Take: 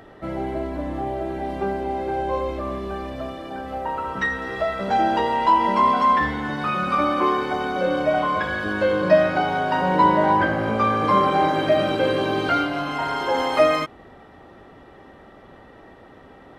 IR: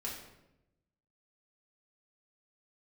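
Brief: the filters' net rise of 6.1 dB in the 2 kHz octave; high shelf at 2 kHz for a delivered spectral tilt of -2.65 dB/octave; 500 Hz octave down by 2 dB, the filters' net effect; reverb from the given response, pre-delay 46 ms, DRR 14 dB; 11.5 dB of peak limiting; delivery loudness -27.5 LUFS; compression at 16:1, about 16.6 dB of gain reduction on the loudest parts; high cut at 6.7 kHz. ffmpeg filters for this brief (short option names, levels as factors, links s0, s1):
-filter_complex "[0:a]lowpass=6700,equalizer=f=500:t=o:g=-3.5,highshelf=f=2000:g=6.5,equalizer=f=2000:t=o:g=4.5,acompressor=threshold=0.0398:ratio=16,alimiter=level_in=1.88:limit=0.0631:level=0:latency=1,volume=0.531,asplit=2[s0][s1];[1:a]atrim=start_sample=2205,adelay=46[s2];[s1][s2]afir=irnorm=-1:irlink=0,volume=0.178[s3];[s0][s3]amix=inputs=2:normalize=0,volume=3.16"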